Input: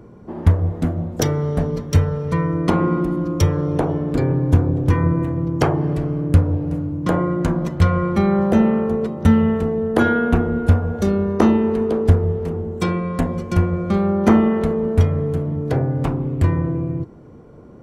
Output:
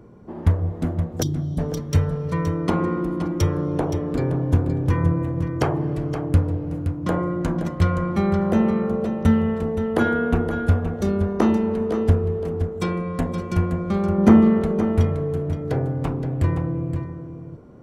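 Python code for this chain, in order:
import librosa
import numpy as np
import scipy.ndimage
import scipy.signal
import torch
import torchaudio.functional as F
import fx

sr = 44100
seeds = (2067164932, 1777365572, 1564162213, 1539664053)

p1 = fx.spec_erase(x, sr, start_s=1.22, length_s=0.37, low_hz=390.0, high_hz=3000.0)
p2 = fx.peak_eq(p1, sr, hz=130.0, db=8.0, octaves=2.3, at=(14.18, 14.61))
p3 = p2 + fx.echo_single(p2, sr, ms=521, db=-9.5, dry=0)
y = p3 * librosa.db_to_amplitude(-4.0)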